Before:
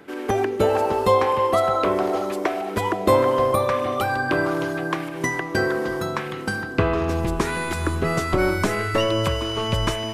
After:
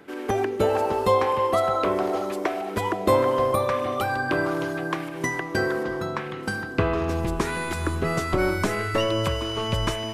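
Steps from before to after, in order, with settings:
0:05.83–0:06.43: low-pass filter 3,800 Hz 6 dB per octave
level −2.5 dB

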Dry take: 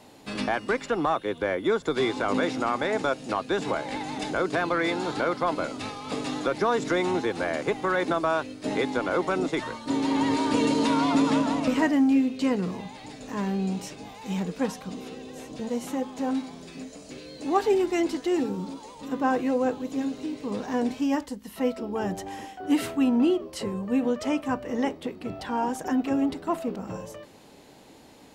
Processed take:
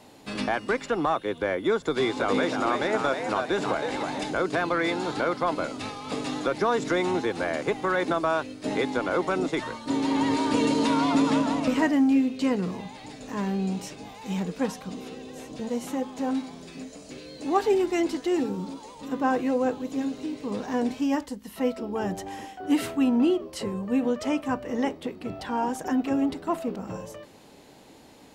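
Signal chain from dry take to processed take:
0:01.80–0:04.23: echo with shifted repeats 318 ms, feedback 37%, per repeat +83 Hz, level −6 dB

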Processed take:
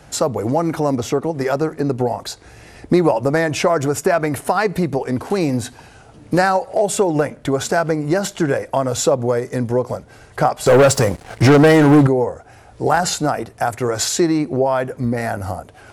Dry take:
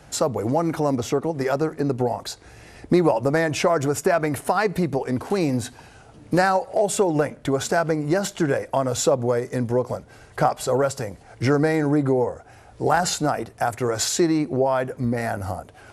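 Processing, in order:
0:10.66–0:12.07: leveller curve on the samples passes 3
level +3.5 dB

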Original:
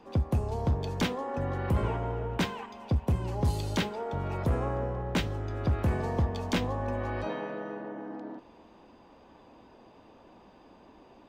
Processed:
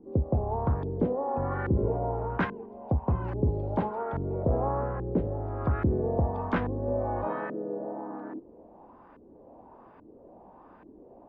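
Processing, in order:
auto-filter low-pass saw up 1.2 Hz 320–1,700 Hz
tape wow and flutter 28 cents

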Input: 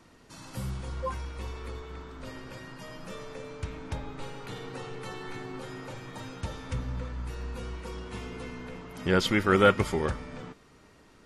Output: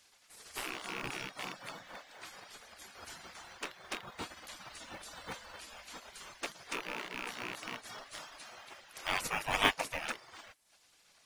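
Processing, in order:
loose part that buzzes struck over −34 dBFS, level −28 dBFS
reverb reduction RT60 0.57 s
gate on every frequency bin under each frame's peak −20 dB weak
in parallel at −11 dB: sample-rate reduction 4,000 Hz, jitter 0%
on the sum: level +4.5 dB

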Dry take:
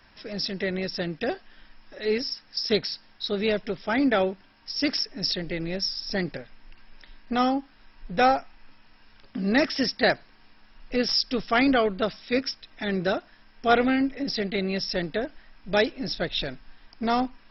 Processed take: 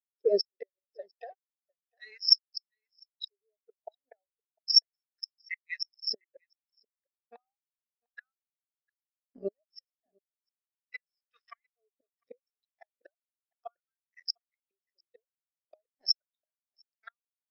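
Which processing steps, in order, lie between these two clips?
auto-filter high-pass saw up 0.34 Hz 340–2,100 Hz
in parallel at +2 dB: brickwall limiter −14.5 dBFS, peak gain reduction 8.5 dB
0:00.97–0:02.28: on the sum: downward compressor 16 to 1, threshold −26 dBFS, peak gain reduction 11.5 dB
dead-zone distortion −34 dBFS
gate with flip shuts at −14 dBFS, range −38 dB
parametric band 5,300 Hz +5.5 dB 0.59 octaves
on a send: single-tap delay 701 ms −15 dB
on the sum: every bin expanded away from the loudest bin 2.5 to 1

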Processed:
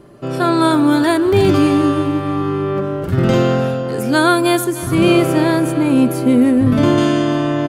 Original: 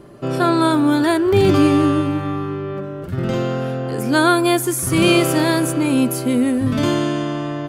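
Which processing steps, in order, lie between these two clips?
0:04.64–0:06.98: high-shelf EQ 2,500 Hz −10 dB
automatic gain control
repeating echo 304 ms, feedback 56%, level −16 dB
level −1 dB

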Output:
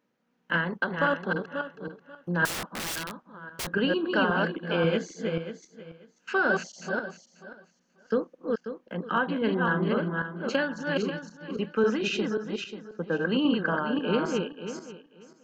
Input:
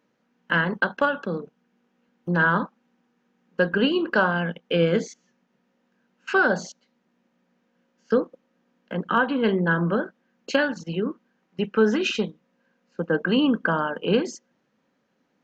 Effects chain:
feedback delay that plays each chunk backwards 269 ms, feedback 41%, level −2.5 dB
0:02.45–0:03.71: wrap-around overflow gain 22.5 dB
level −5.5 dB

